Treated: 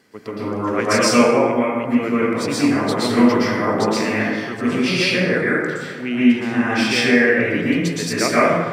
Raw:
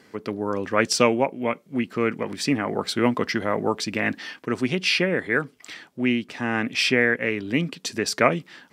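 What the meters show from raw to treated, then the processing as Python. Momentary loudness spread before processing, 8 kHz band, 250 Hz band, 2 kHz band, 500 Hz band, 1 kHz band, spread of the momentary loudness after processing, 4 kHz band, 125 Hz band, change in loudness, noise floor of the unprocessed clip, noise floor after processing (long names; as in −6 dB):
9 LU, +5.0 dB, +8.0 dB, +5.0 dB, +6.0 dB, +6.0 dB, 8 LU, +3.5 dB, +5.5 dB, +6.0 dB, −56 dBFS, −30 dBFS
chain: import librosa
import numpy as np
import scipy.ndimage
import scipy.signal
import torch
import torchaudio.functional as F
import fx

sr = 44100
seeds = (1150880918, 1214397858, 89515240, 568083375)

y = fx.high_shelf(x, sr, hz=7100.0, db=5.0)
y = fx.rev_plate(y, sr, seeds[0], rt60_s=1.7, hf_ratio=0.4, predelay_ms=105, drr_db=-9.0)
y = F.gain(torch.from_numpy(y), -4.5).numpy()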